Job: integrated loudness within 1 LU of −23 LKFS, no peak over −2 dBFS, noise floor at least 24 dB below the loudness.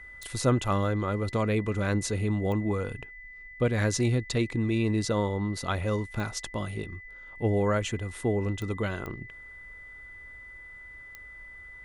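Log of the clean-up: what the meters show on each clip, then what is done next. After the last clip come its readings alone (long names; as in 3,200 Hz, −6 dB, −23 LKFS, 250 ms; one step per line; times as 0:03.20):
number of clicks 6; interfering tone 2,000 Hz; level of the tone −44 dBFS; integrated loudness −29.0 LKFS; sample peak −13.0 dBFS; target loudness −23.0 LKFS
→ click removal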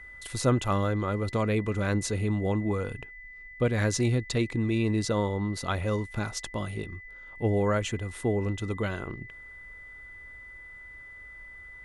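number of clicks 0; interfering tone 2,000 Hz; level of the tone −44 dBFS
→ notch filter 2,000 Hz, Q 30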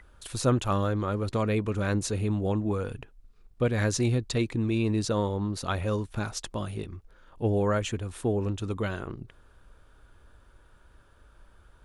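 interfering tone none found; integrated loudness −29.0 LKFS; sample peak −13.0 dBFS; target loudness −23.0 LKFS
→ level +6 dB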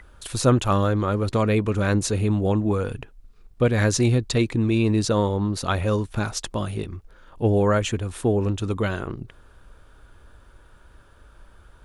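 integrated loudness −23.0 LKFS; sample peak −7.0 dBFS; background noise floor −52 dBFS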